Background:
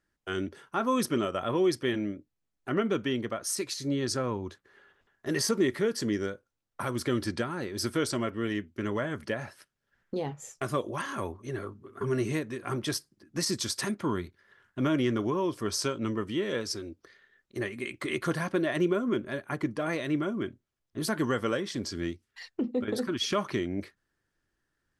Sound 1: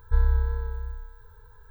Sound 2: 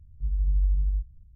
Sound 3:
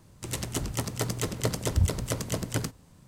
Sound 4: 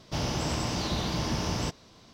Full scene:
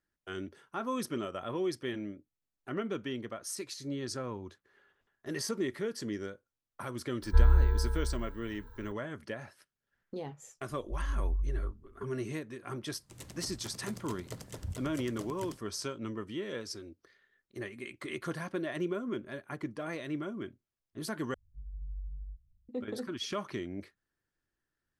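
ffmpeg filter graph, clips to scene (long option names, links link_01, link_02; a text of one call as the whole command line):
ffmpeg -i bed.wav -i cue0.wav -i cue1.wav -i cue2.wav -filter_complex "[2:a]asplit=2[link_01][link_02];[0:a]volume=-7.5dB,asplit=2[link_03][link_04];[link_03]atrim=end=21.344[link_05];[link_02]atrim=end=1.35,asetpts=PTS-STARTPTS,volume=-17.5dB[link_06];[link_04]atrim=start=22.686[link_07];[1:a]atrim=end=1.7,asetpts=PTS-STARTPTS,volume=-0.5dB,afade=type=in:duration=0.004:curve=hsin,afade=type=out:start_time=1.696:duration=0.004:curve=hsin,adelay=318402S[link_08];[link_01]atrim=end=1.35,asetpts=PTS-STARTPTS,volume=-8dB,afade=type=in:duration=0.004:curve=hsin,afade=type=out:start_time=1.346:duration=0.004:curve=hsin,adelay=10690[link_09];[3:a]atrim=end=3.07,asetpts=PTS-STARTPTS,volume=-15.5dB,afade=type=in:duration=0.004:curve=hsin,afade=type=out:start_time=3.066:duration=0.004:curve=hsin,adelay=12870[link_10];[link_05][link_06]acrossfade=duration=0.004:curve1=hsin:curve2=hsin[link_11];[link_11][link_07]acrossfade=duration=0.004:curve1=hsin:curve2=hsin[link_12];[link_12][link_08][link_09][link_10]amix=inputs=4:normalize=0" out.wav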